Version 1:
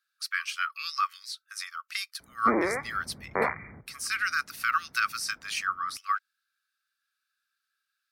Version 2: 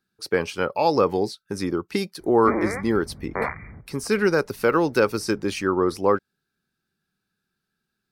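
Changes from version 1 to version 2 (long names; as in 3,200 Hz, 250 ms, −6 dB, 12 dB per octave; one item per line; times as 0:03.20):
speech: remove linear-phase brick-wall high-pass 1,100 Hz
master: remove high-pass filter 210 Hz 6 dB per octave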